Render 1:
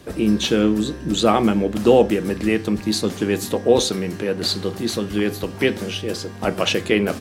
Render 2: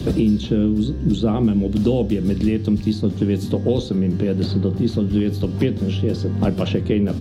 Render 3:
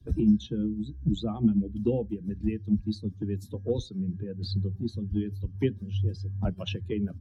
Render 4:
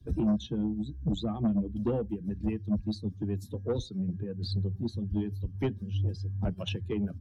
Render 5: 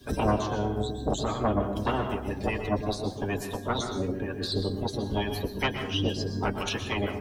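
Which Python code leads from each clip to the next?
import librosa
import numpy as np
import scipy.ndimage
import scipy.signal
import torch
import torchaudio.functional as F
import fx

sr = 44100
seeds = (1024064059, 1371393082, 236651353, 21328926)

y1 = fx.curve_eq(x, sr, hz=(130.0, 870.0, 2100.0, 3700.0, 8100.0), db=(0, -20, -24, -16, -27))
y1 = fx.band_squash(y1, sr, depth_pct=100)
y1 = F.gain(torch.from_numpy(y1), 8.0).numpy()
y2 = fx.bin_expand(y1, sr, power=2.0)
y2 = fx.low_shelf(y2, sr, hz=180.0, db=5.0)
y2 = fx.band_widen(y2, sr, depth_pct=100)
y2 = F.gain(torch.from_numpy(y2), -7.5).numpy()
y3 = 10.0 ** (-22.0 / 20.0) * np.tanh(y2 / 10.0 ** (-22.0 / 20.0))
y4 = fx.spec_clip(y3, sr, under_db=28)
y4 = fx.notch_comb(y4, sr, f0_hz=170.0)
y4 = fx.rev_plate(y4, sr, seeds[0], rt60_s=0.74, hf_ratio=0.5, predelay_ms=105, drr_db=6.0)
y4 = F.gain(torch.from_numpy(y4), 3.0).numpy()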